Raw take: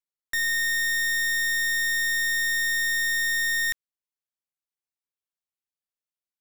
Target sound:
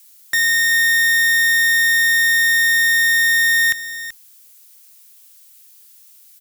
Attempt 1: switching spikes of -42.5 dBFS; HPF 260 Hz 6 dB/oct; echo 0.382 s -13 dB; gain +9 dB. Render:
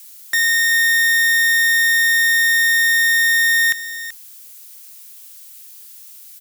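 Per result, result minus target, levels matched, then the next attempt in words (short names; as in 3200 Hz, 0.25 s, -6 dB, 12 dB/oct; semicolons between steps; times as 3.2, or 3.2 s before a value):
125 Hz band -5.5 dB; switching spikes: distortion +7 dB
switching spikes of -42.5 dBFS; HPF 92 Hz 6 dB/oct; echo 0.382 s -13 dB; gain +9 dB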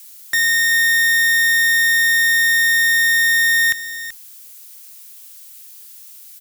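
switching spikes: distortion +7 dB
switching spikes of -49.5 dBFS; HPF 92 Hz 6 dB/oct; echo 0.382 s -13 dB; gain +9 dB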